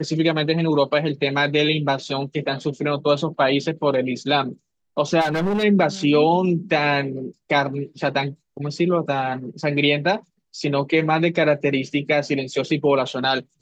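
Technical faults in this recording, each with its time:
0:05.20–0:05.64: clipping −18 dBFS

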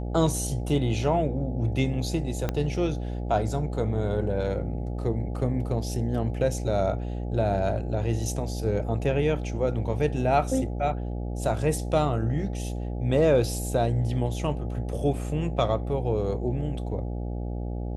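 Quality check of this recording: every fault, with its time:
mains buzz 60 Hz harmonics 14 −31 dBFS
0:02.49: click −13 dBFS

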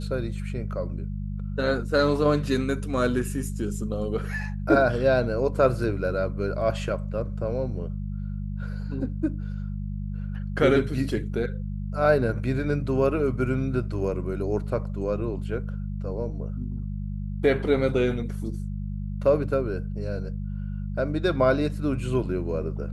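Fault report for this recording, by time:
mains hum 50 Hz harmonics 4 −31 dBFS

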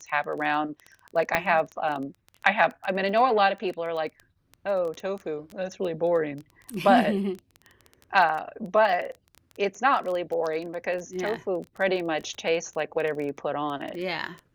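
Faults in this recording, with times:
surface crackle 15 per second −31 dBFS
0:01.35: click −8 dBFS

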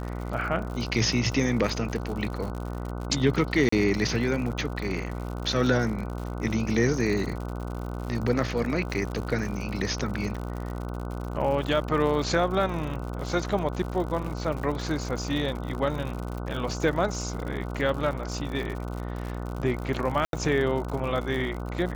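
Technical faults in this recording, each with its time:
mains buzz 60 Hz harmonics 25 −33 dBFS
surface crackle 98 per second −33 dBFS
0:03.69–0:03.72: drop-out 34 ms
0:20.25–0:20.33: drop-out 82 ms

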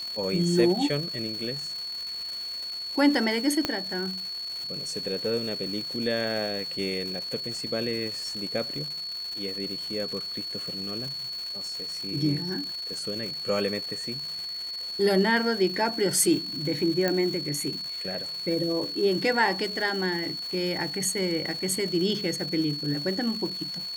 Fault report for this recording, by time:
surface crackle 470 per second −34 dBFS
whistle 4,400 Hz −32 dBFS
0:03.65: click −10 dBFS
0:17.08: click −12 dBFS

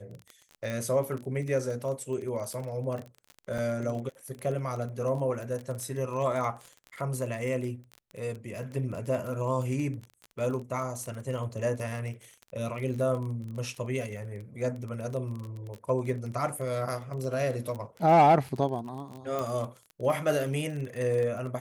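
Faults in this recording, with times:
surface crackle 26 per second −34 dBFS
0:00.70: click −21 dBFS
0:03.58: drop-out 4.8 ms
0:19.39: click

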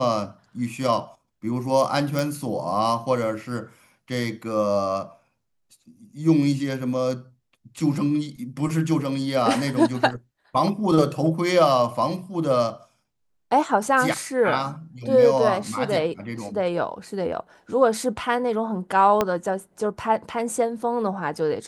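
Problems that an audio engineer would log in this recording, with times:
0:02.19: click
0:19.21: click −7 dBFS

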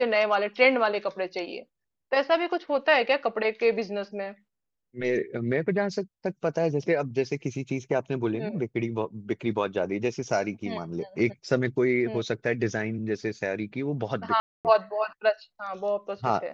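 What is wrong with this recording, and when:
0:14.40–0:14.65: drop-out 248 ms

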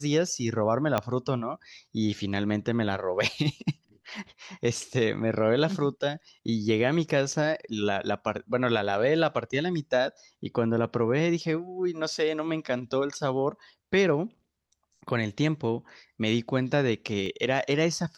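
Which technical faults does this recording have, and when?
0:00.98: click −11 dBFS
0:17.26: drop-out 2.2 ms

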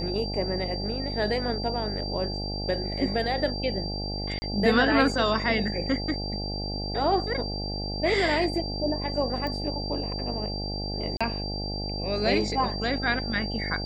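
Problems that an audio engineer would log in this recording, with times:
mains buzz 50 Hz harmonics 17 −33 dBFS
whistle 4,700 Hz −34 dBFS
0:04.39–0:04.42: drop-out 30 ms
0:09.47: click −20 dBFS
0:11.17–0:11.21: drop-out 36 ms

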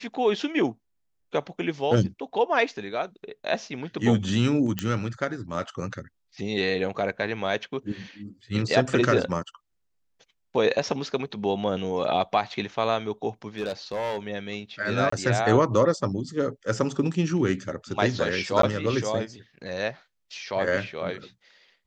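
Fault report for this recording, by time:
0:04.79: click −10 dBFS
0:13.58–0:14.19: clipping −24.5 dBFS
0:15.10–0:15.12: drop-out 24 ms
0:18.62–0:18.63: drop-out 13 ms

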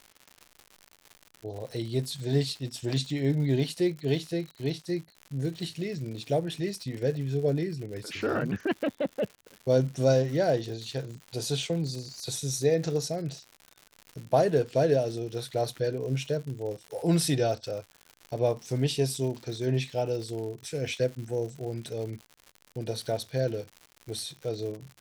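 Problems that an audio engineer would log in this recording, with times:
surface crackle 130 per second −37 dBFS

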